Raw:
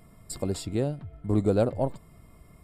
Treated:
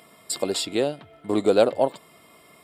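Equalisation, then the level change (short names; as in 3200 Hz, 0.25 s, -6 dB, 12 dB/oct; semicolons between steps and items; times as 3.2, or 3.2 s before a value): HPF 370 Hz 12 dB/oct; bell 3300 Hz +8.5 dB 0.99 oct; +8.0 dB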